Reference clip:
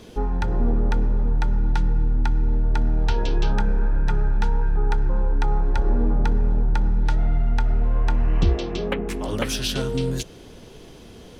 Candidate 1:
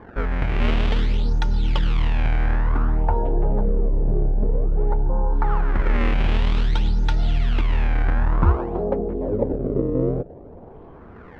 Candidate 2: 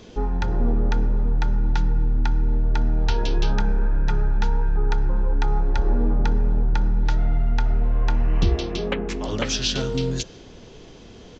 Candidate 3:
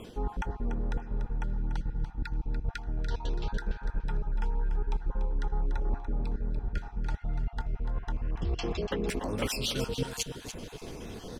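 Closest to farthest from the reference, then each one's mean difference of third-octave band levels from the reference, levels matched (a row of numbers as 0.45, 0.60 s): 2, 3, 1; 1.5, 4.5, 8.0 dB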